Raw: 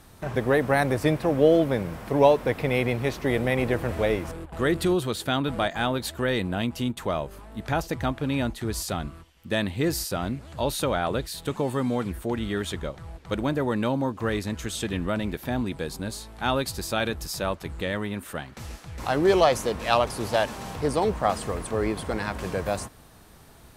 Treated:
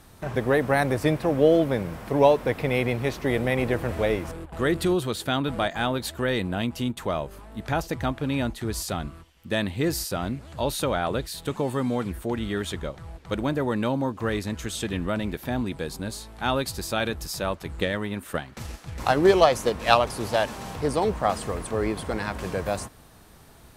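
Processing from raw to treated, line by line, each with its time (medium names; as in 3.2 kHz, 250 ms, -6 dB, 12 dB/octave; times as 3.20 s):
17.74–19.97 s: transient shaper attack +7 dB, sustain -1 dB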